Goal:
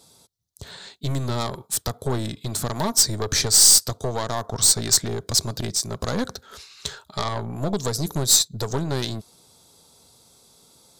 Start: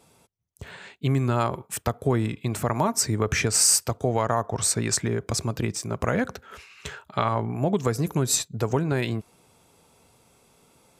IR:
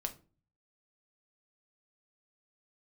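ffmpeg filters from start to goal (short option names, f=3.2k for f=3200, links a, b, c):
-af "aeval=exprs='0.447*(cos(1*acos(clip(val(0)/0.447,-1,1)))-cos(1*PI/2))+0.0355*(cos(4*acos(clip(val(0)/0.447,-1,1)))-cos(4*PI/2))+0.0891*(cos(5*acos(clip(val(0)/0.447,-1,1)))-cos(5*PI/2))+0.0562*(cos(8*acos(clip(val(0)/0.447,-1,1)))-cos(8*PI/2))':c=same,highshelf=f=3.2k:t=q:w=3:g=7,volume=-6dB"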